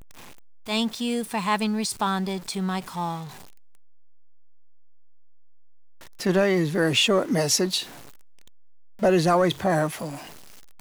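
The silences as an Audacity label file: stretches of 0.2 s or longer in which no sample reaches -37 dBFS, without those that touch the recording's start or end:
3.280000	6.200000	silence
7.840000	9.020000	silence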